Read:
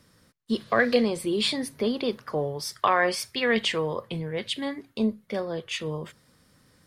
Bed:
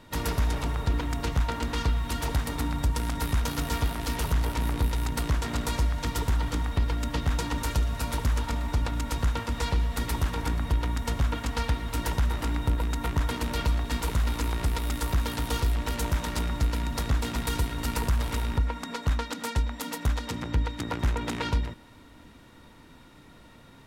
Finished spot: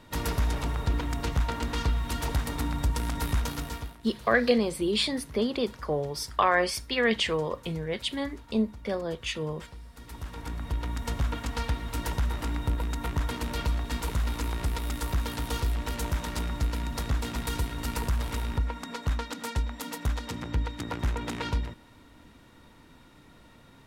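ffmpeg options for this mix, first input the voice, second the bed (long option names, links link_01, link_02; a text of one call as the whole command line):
ffmpeg -i stem1.wav -i stem2.wav -filter_complex "[0:a]adelay=3550,volume=-1dB[link_01];[1:a]volume=16.5dB,afade=type=out:start_time=3.36:duration=0.62:silence=0.112202,afade=type=in:start_time=9.95:duration=1.16:silence=0.133352[link_02];[link_01][link_02]amix=inputs=2:normalize=0" out.wav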